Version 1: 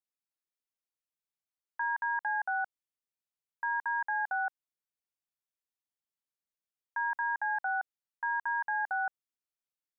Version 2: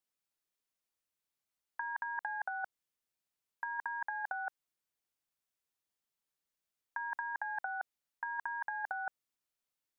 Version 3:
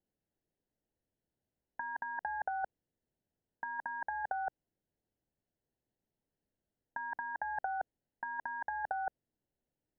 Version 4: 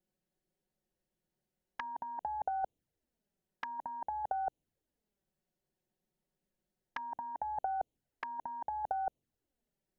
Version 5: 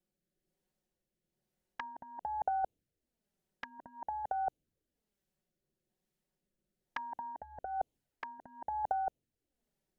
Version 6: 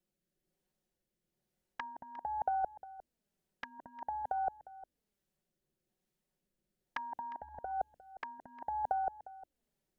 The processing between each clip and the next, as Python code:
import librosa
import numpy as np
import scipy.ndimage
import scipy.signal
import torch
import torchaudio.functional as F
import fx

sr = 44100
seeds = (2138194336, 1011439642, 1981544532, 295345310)

y1 = fx.over_compress(x, sr, threshold_db=-35.0, ratio=-0.5)
y1 = y1 * 10.0 ** (-1.5 / 20.0)
y2 = np.convolve(y1, np.full(37, 1.0 / 37))[:len(y1)]
y2 = fx.low_shelf(y2, sr, hz=400.0, db=5.0)
y2 = y2 * 10.0 ** (11.0 / 20.0)
y3 = fx.env_flanger(y2, sr, rest_ms=5.5, full_db=-39.0)
y3 = y3 * 10.0 ** (4.5 / 20.0)
y4 = fx.rotary(y3, sr, hz=1.1)
y4 = y4 * 10.0 ** (2.5 / 20.0)
y5 = y4 + 10.0 ** (-17.5 / 20.0) * np.pad(y4, (int(355 * sr / 1000.0), 0))[:len(y4)]